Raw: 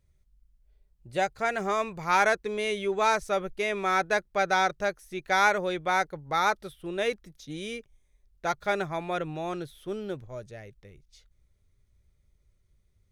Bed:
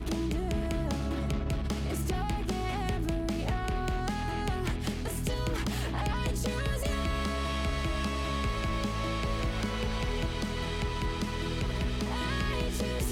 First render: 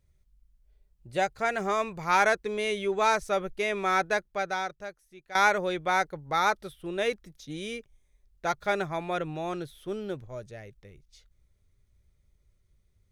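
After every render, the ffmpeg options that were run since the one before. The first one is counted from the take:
-filter_complex "[0:a]asplit=2[a][b];[a]atrim=end=5.35,asetpts=PTS-STARTPTS,afade=t=out:st=4.03:d=1.32:c=qua:silence=0.158489[c];[b]atrim=start=5.35,asetpts=PTS-STARTPTS,afade=t=in:d=0.004:c=hsin:silence=0.158489[d];[c][d]concat=n=2:v=0:a=1"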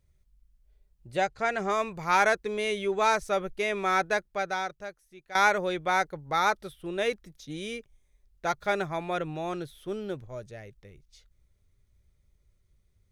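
-filter_complex "[0:a]asettb=1/sr,asplit=3[a][b][c];[a]atrim=end=1.164[d];[b]atrim=start=1.16:end=1.7,asetpts=PTS-STARTPTS,afade=t=in:d=0.004:c=qsin,afade=t=out:st=0.536:d=0.004:c=qsin,lowpass=7.5k[e];[c]atrim=start=1.696[f];[d][e]acrossfade=d=0.004:c1=hsin:c2=qsin[g];[g][f]acrossfade=d=0.004:c1=qsin:c2=hsin"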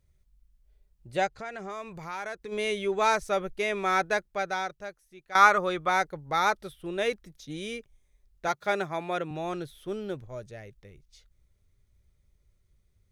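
-filter_complex "[0:a]asplit=3[a][b][c];[a]afade=t=out:st=1.27:d=0.02[d];[b]acompressor=threshold=-39dB:ratio=2.5:attack=3.2:release=140:knee=1:detection=peak,afade=t=in:st=1.27:d=0.02,afade=t=out:st=2.51:d=0.02[e];[c]afade=t=in:st=2.51:d=0.02[f];[d][e][f]amix=inputs=3:normalize=0,asettb=1/sr,asplit=3[g][h][i];[g]atrim=end=5.324[j];[h]atrim=start=5.32:end=5.89,asetpts=PTS-STARTPTS,afade=t=in:d=0.004:c=qsin,afade=t=out:st=0.566:d=0.004:c=qsin,equalizer=f=1.2k:t=o:w=0.25:g=14.5[k];[i]atrim=start=5.886[l];[j][k]acrossfade=d=0.004:c1=hsin:c2=qsin[m];[m][l]acrossfade=d=0.004:c1=qsin:c2=hsin,asettb=1/sr,asplit=3[n][o][p];[n]atrim=end=8.484[q];[o]atrim=start=8.48:end=9.31,asetpts=PTS-STARTPTS,afade=t=in:d=0.004:c=qsin,afade=t=out:st=0.826:d=0.004:c=qsin,highpass=160[r];[p]atrim=start=9.306[s];[q][r]acrossfade=d=0.004:c1=hsin:c2=qsin[t];[t][s]acrossfade=d=0.004:c1=qsin:c2=hsin"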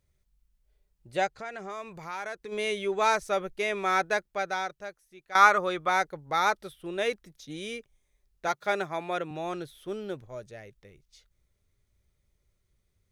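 -af "lowshelf=f=150:g=-7.5"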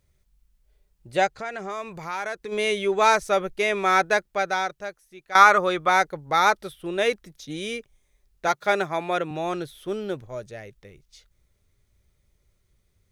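-af "volume=6dB,alimiter=limit=-2dB:level=0:latency=1"

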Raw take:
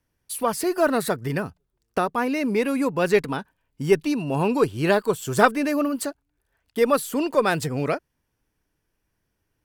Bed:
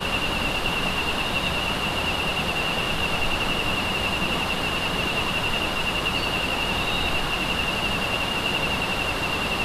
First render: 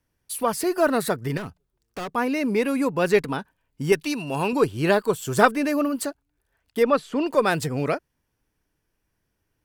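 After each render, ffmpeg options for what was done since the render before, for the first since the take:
-filter_complex "[0:a]asettb=1/sr,asplit=3[a][b][c];[a]atrim=end=1.374[d];[b]atrim=start=1.37:end=2.15,asetpts=PTS-STARTPTS,afade=t=in:d=0.004:c=qsin,afade=t=out:st=0.776:d=0.004:c=qsin,volume=29dB,asoftclip=hard,volume=-29dB[e];[c]atrim=start=2.146[f];[d][e]acrossfade=d=0.004:c1=hsin:c2=qsin[g];[g][f]acrossfade=d=0.004:c1=qsin:c2=hsin,asettb=1/sr,asplit=3[h][i][j];[h]atrim=end=3.924[k];[i]atrim=start=3.92:end=4.53,asetpts=PTS-STARTPTS,afade=t=in:d=0.004:c=qsin,afade=t=out:st=0.606:d=0.004:c=qsin,tiltshelf=f=940:g=-5[l];[j]atrim=start=4.526[m];[k][l]acrossfade=d=0.004:c1=hsin:c2=qsin[n];[n][m]acrossfade=d=0.004:c1=qsin:c2=hsin,asplit=3[o][p][q];[o]afade=t=out:st=6.82:d=0.02[r];[p]lowpass=3.8k,afade=t=in:st=6.82:d=0.02,afade=t=out:st=7.25:d=0.02[s];[q]afade=t=in:st=7.25:d=0.02[t];[r][s][t]amix=inputs=3:normalize=0"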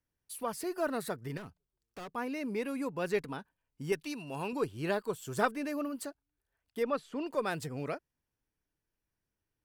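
-af "volume=-12.5dB"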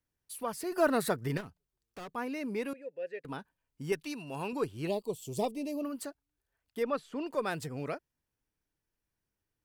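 -filter_complex "[0:a]asettb=1/sr,asplit=3[a][b][c];[a]atrim=end=0.724[d];[b]atrim=start=0.72:end=1.41,asetpts=PTS-STARTPTS,afade=t=in:d=0.004:c=qsin,afade=t=out:st=0.686:d=0.004:c=qsin,acontrast=58[e];[c]atrim=start=1.406[f];[d][e]acrossfade=d=0.004:c1=hsin:c2=qsin[g];[g][f]acrossfade=d=0.004:c1=qsin:c2=hsin,asettb=1/sr,asplit=3[h][i][j];[h]atrim=end=2.734[k];[i]atrim=start=2.73:end=3.25,asetpts=PTS-STARTPTS,afade=t=in:d=0.004:c=qsin,afade=t=out:st=0.516:d=0.004:c=qsin,asplit=3[l][m][n];[l]bandpass=f=530:t=q:w=8,volume=0dB[o];[m]bandpass=f=1.84k:t=q:w=8,volume=-6dB[p];[n]bandpass=f=2.48k:t=q:w=8,volume=-9dB[q];[o][p][q]amix=inputs=3:normalize=0[r];[j]atrim=start=3.246[s];[k][r]acrossfade=d=0.004:c1=hsin:c2=qsin[t];[t][s]acrossfade=d=0.004:c1=qsin:c2=hsin,asettb=1/sr,asplit=3[u][v][w];[u]atrim=end=4.874[x];[v]atrim=start=4.87:end=5.83,asetpts=PTS-STARTPTS,afade=t=in:d=0.004:c=qsin,afade=t=out:st=0.956:d=0.004:c=qsin,asuperstop=centerf=1500:order=4:qfactor=0.78[y];[w]atrim=start=5.826[z];[x][y]acrossfade=d=0.004:c1=hsin:c2=qsin[aa];[aa][z]acrossfade=d=0.004:c1=qsin:c2=hsin"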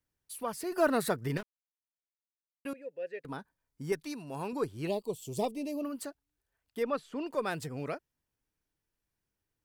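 -filter_complex "[0:a]asettb=1/sr,asplit=3[a][b][c];[a]atrim=end=3.264[d];[b]atrim=start=3.26:end=4.82,asetpts=PTS-STARTPTS,afade=t=in:d=0.004:c=qsin,afade=t=out:st=1.556:d=0.004:c=qsin,equalizer=f=2.8k:t=o:w=0.31:g=-9.5[e];[c]atrim=start=4.816[f];[d][e]acrossfade=d=0.004:c1=hsin:c2=qsin[g];[g][f]acrossfade=d=0.004:c1=qsin:c2=hsin,asplit=3[h][i][j];[h]atrim=end=1.43,asetpts=PTS-STARTPTS,afade=t=out:st=1.426:d=0.004:c=hsin[k];[i]atrim=start=1.43:end=2.65,asetpts=PTS-STARTPTS,volume=0[l];[j]atrim=start=2.65,asetpts=PTS-STARTPTS,afade=t=in:d=0.004:c=hsin[m];[k][l][m]concat=n=3:v=0:a=1"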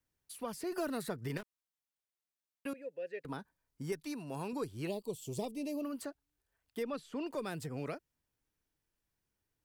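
-filter_complex "[0:a]acrossover=split=370|2600|7700[a][b][c][d];[a]acompressor=threshold=-39dB:ratio=4[e];[b]acompressor=threshold=-41dB:ratio=4[f];[c]acompressor=threshold=-52dB:ratio=4[g];[d]acompressor=threshold=-53dB:ratio=4[h];[e][f][g][h]amix=inputs=4:normalize=0"

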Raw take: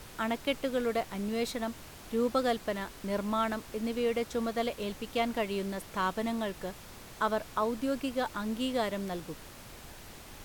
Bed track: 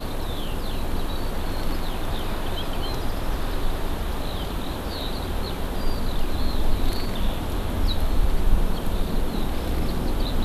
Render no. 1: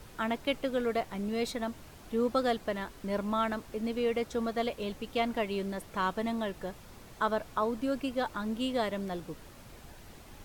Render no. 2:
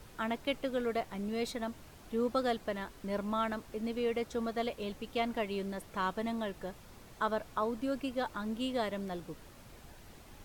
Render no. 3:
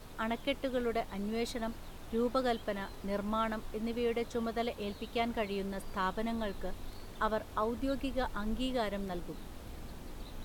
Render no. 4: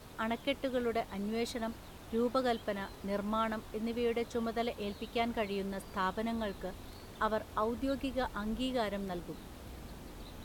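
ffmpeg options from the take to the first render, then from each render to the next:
-af "afftdn=nr=6:nf=-49"
-af "volume=-3dB"
-filter_complex "[1:a]volume=-22dB[a];[0:a][a]amix=inputs=2:normalize=0"
-af "highpass=41"

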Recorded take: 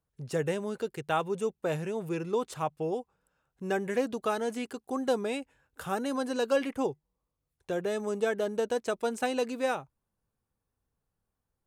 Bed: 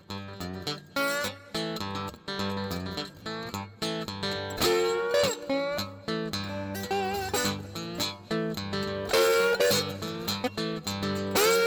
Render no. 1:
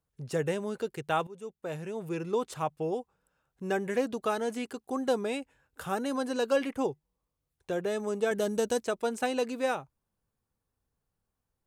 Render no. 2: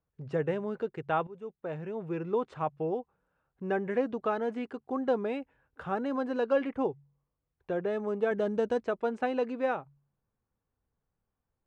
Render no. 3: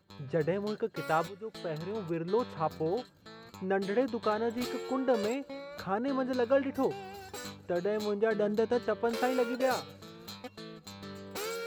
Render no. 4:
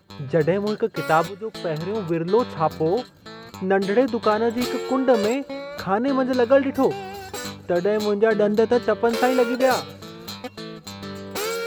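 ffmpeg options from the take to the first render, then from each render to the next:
-filter_complex "[0:a]asettb=1/sr,asplit=3[a][b][c];[a]atrim=end=8.314[d];[b]atrim=start=8.31:end=8.85,asetpts=PTS-STARTPTS,afade=t=in:d=0.004:c=qsin,afade=t=out:st=0.536:d=0.004:c=qsin,bass=f=250:g=7,treble=f=4k:g=10[e];[c]atrim=start=8.846[f];[d][e]acrossfade=d=0.004:c1=hsin:c2=qsin[g];[g][f]acrossfade=d=0.004:c1=qsin:c2=hsin,asplit=2[h][i];[h]atrim=end=1.27,asetpts=PTS-STARTPTS,afade=t=out:st=1.266:d=0.004:c=hsin:silence=0.149624[j];[i]atrim=start=1.27,asetpts=PTS-STARTPTS,afade=t=in:d=1.03:silence=0.149624[k];[j][k]concat=n=2:v=0:a=1"
-af "lowpass=2k,bandreject=f=47.04:t=h:w=4,bandreject=f=94.08:t=h:w=4,bandreject=f=141.12:t=h:w=4"
-filter_complex "[1:a]volume=-14.5dB[a];[0:a][a]amix=inputs=2:normalize=0"
-af "volume=10.5dB"

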